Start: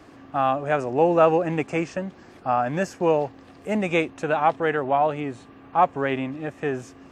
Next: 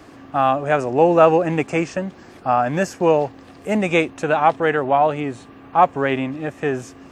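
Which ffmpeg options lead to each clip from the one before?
ffmpeg -i in.wav -af "highshelf=frequency=6900:gain=4.5,volume=4.5dB" out.wav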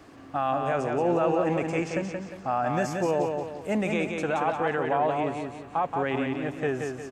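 ffmpeg -i in.wav -filter_complex "[0:a]alimiter=limit=-11dB:level=0:latency=1:release=21,asplit=2[link_01][link_02];[link_02]aecho=0:1:177|354|531|708|885:0.596|0.244|0.1|0.0411|0.0168[link_03];[link_01][link_03]amix=inputs=2:normalize=0,volume=-6.5dB" out.wav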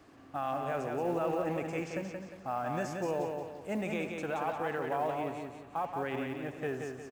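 ffmpeg -i in.wav -filter_complex "[0:a]acrusher=bits=8:mode=log:mix=0:aa=0.000001,asplit=2[link_01][link_02];[link_02]adelay=80,highpass=300,lowpass=3400,asoftclip=type=hard:threshold=-22.5dB,volume=-11dB[link_03];[link_01][link_03]amix=inputs=2:normalize=0,volume=-8dB" out.wav

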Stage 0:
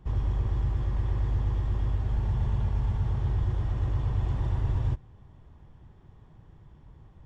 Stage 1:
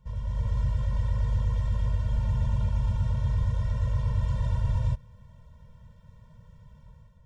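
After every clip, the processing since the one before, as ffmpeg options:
ffmpeg -i in.wav -af "bass=frequency=250:gain=-3,treble=frequency=4000:gain=7,dynaudnorm=framelen=100:gausssize=7:maxgain=7dB,afftfilt=real='re*eq(mod(floor(b*sr/1024/220),2),0)':imag='im*eq(mod(floor(b*sr/1024/220),2),0)':win_size=1024:overlap=0.75,volume=-3dB" out.wav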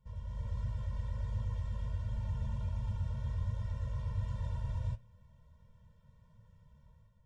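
ffmpeg -i in.wav -af "flanger=delay=8.7:depth=6.1:regen=65:speed=1.4:shape=triangular,volume=-5.5dB" out.wav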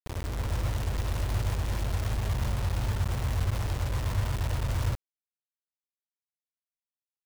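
ffmpeg -i in.wav -af "acrusher=bits=6:mix=0:aa=0.000001,volume=7dB" out.wav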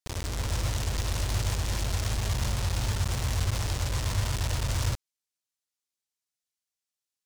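ffmpeg -i in.wav -af "equalizer=frequency=6300:width=0.51:gain=10" out.wav

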